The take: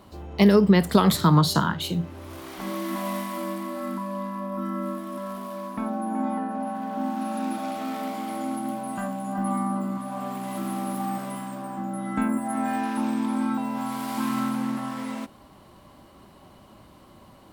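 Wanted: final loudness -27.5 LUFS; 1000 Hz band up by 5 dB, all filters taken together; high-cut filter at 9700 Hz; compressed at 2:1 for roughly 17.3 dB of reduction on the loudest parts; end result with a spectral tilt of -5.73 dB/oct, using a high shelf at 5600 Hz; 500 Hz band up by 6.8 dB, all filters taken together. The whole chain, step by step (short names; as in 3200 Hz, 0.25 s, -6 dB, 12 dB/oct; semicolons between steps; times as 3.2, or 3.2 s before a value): LPF 9700 Hz; bell 500 Hz +8 dB; bell 1000 Hz +3.5 dB; high shelf 5600 Hz +6 dB; compressor 2:1, threshold -42 dBFS; gain +8.5 dB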